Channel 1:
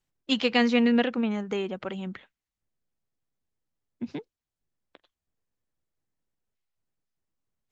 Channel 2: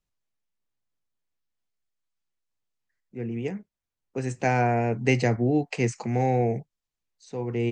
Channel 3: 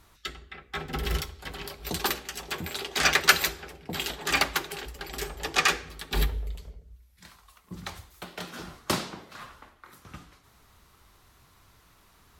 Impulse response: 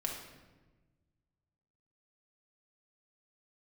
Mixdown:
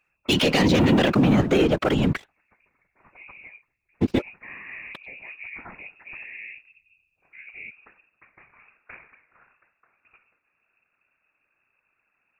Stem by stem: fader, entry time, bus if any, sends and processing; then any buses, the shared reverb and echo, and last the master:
+3.0 dB, 0.00 s, no bus, no send, leveller curve on the samples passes 3
−14.5 dB, 0.00 s, bus A, no send, no processing
−14.0 dB, 0.00 s, bus A, no send, automatic ducking −19 dB, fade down 1.60 s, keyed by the first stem
bus A: 0.0 dB, voice inversion scrambler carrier 2,600 Hz; brickwall limiter −31.5 dBFS, peak gain reduction 8.5 dB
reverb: not used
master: random phases in short frames; brickwall limiter −10 dBFS, peak gain reduction 9.5 dB

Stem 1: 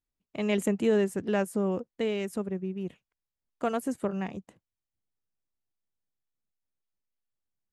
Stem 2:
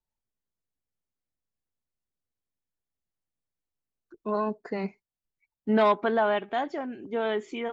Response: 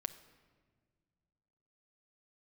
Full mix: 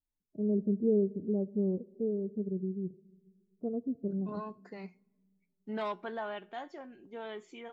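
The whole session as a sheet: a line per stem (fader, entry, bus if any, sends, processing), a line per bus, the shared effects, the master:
−4.5 dB, 0.00 s, send −4 dB, inverse Chebyshev low-pass filter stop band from 2,000 Hz, stop band 70 dB; harmonic and percussive parts rebalanced percussive −11 dB
−8.5 dB, 0.00 s, send −17 dB, tuned comb filter 180 Hz, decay 0.24 s, harmonics all, mix 60%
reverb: on, RT60 1.7 s, pre-delay 6 ms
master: high-shelf EQ 4,600 Hz +7 dB

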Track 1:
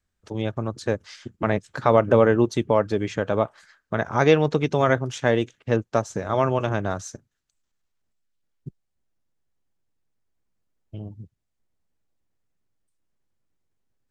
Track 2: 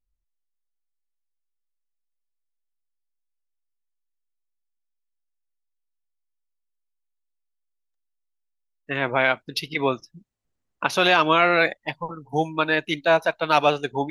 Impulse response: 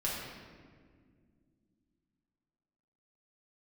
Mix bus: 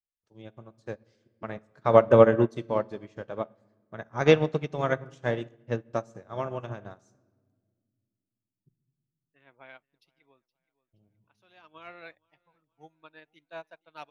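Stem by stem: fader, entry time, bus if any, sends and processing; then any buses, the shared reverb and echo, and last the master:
0.0 dB, 0.00 s, send −12 dB, no echo send, no processing
−6.0 dB, 0.45 s, no send, echo send −22 dB, automatic ducking −11 dB, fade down 1.15 s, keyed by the first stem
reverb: on, RT60 1.9 s, pre-delay 5 ms
echo: repeating echo 472 ms, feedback 44%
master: expander for the loud parts 2.5 to 1, over −31 dBFS

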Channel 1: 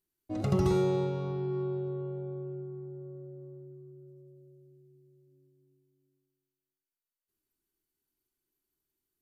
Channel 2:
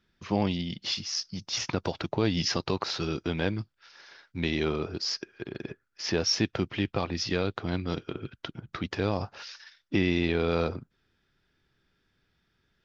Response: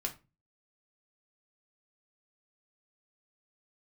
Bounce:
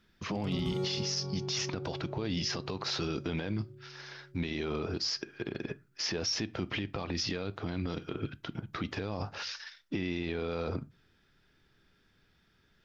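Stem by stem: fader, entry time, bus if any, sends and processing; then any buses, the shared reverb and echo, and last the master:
−6.5 dB, 0.00 s, no send, low-shelf EQ 150 Hz +7 dB
+2.5 dB, 0.00 s, send −12.5 dB, brickwall limiter −22.5 dBFS, peak gain reduction 10.5 dB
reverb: on, RT60 0.30 s, pre-delay 4 ms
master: brickwall limiter −24 dBFS, peak gain reduction 10 dB

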